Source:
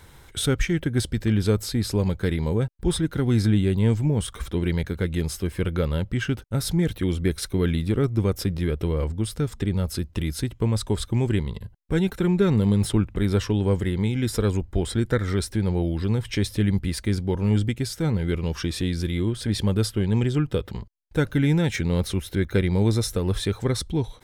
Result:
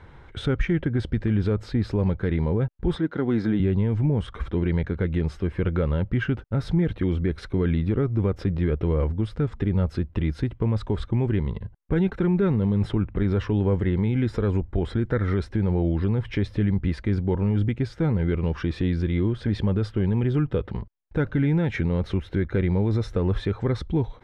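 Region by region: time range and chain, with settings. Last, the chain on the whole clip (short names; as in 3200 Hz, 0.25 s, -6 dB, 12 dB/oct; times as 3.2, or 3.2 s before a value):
2.95–3.6 BPF 220–7500 Hz + bell 2600 Hz -4 dB 0.39 oct
whole clip: LPF 2000 Hz 12 dB/oct; limiter -16.5 dBFS; gain +2.5 dB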